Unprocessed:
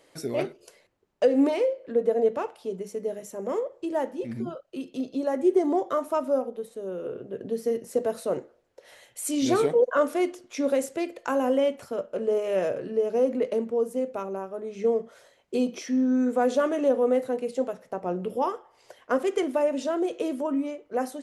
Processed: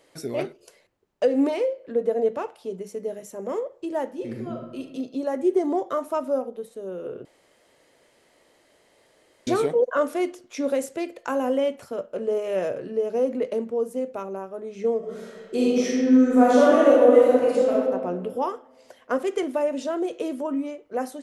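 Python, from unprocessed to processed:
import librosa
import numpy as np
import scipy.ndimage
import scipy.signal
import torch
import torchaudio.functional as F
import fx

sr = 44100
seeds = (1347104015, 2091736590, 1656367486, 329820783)

y = fx.reverb_throw(x, sr, start_s=4.12, length_s=0.68, rt60_s=1.0, drr_db=2.5)
y = fx.reverb_throw(y, sr, start_s=14.98, length_s=2.73, rt60_s=1.7, drr_db=-7.5)
y = fx.edit(y, sr, fx.room_tone_fill(start_s=7.25, length_s=2.22), tone=tone)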